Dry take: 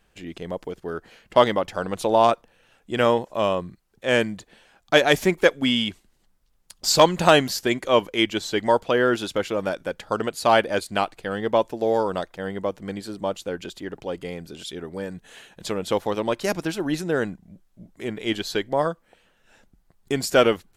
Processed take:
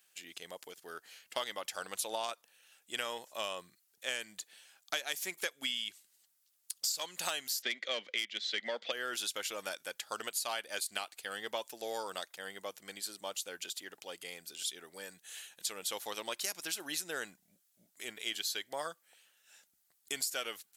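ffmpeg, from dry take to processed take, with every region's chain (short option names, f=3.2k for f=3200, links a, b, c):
-filter_complex "[0:a]asettb=1/sr,asplit=3[a][b][c];[a]atrim=end=7.624[d];[b]atrim=start=7.62:end=8.92,asetpts=PTS-STARTPTS,afade=t=in:d=0.004:c=qsin,afade=t=out:st=1.296:d=0.004:c=qsin,highpass=f=180:w=0.5412,highpass=f=180:w=1.3066,equalizer=f=220:t=q:w=4:g=8,equalizer=f=540:t=q:w=4:g=7,equalizer=f=960:t=q:w=4:g=-8,equalizer=f=2k:t=q:w=4:g=10,equalizer=f=3.5k:t=q:w=4:g=6,lowpass=f=4.7k:w=0.5412,lowpass=f=4.7k:w=1.3066,acontrast=55[e];[c]atrim=start=8.916[f];[d][e]acrossfade=d=0.004:c1=hsin:c2=qsin[g];[g][f]acrossfade=d=0.004:c1=qsin:c2=hsin,aderivative,bandreject=f=1k:w=19,acompressor=threshold=-37dB:ratio=16,volume=5dB"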